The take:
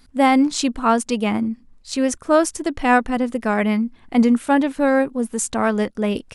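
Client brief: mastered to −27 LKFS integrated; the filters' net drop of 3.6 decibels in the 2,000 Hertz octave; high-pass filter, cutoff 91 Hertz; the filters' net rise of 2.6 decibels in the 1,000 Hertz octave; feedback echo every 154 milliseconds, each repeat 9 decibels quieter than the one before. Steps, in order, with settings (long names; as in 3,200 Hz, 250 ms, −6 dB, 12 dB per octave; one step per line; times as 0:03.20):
high-pass filter 91 Hz
parametric band 1,000 Hz +5 dB
parametric band 2,000 Hz −7 dB
repeating echo 154 ms, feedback 35%, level −9 dB
level −8.5 dB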